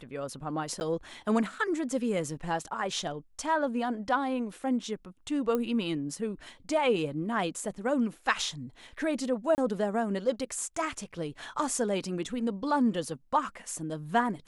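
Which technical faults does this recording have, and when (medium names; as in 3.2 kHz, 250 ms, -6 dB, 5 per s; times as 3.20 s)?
0.80–0.81 s: dropout 9.9 ms
5.55 s: pop -18 dBFS
9.55–9.58 s: dropout 29 ms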